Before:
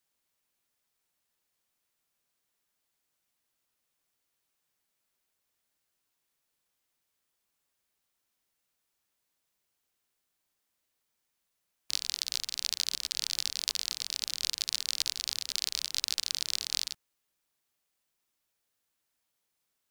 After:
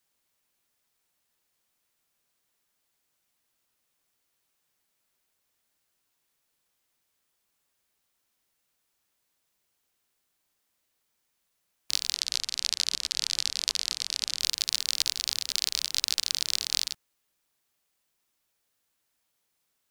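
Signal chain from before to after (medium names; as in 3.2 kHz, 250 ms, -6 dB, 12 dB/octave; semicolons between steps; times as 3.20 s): 12.14–14.40 s: low-pass 10 kHz 12 dB/octave; trim +4 dB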